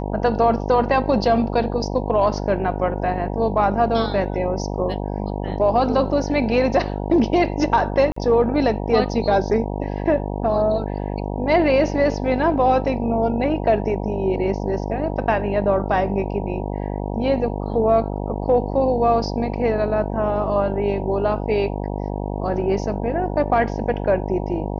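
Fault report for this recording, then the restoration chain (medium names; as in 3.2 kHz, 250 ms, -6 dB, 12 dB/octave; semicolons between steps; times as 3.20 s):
buzz 50 Hz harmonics 19 -26 dBFS
8.12–8.16 s: dropout 44 ms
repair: de-hum 50 Hz, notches 19; interpolate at 8.12 s, 44 ms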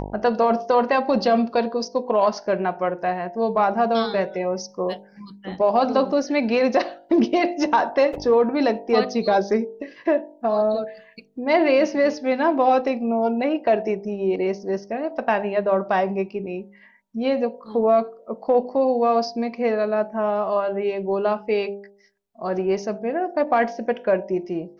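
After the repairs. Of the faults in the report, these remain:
nothing left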